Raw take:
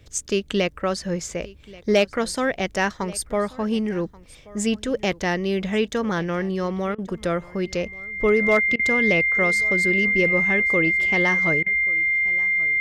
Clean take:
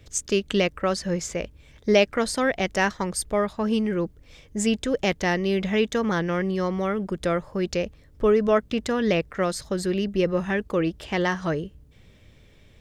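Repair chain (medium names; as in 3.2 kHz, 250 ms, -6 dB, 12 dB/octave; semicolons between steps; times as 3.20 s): clip repair -10 dBFS; band-stop 2.1 kHz, Q 30; interpolate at 6.95/8.76/11.63 s, 32 ms; inverse comb 1132 ms -21.5 dB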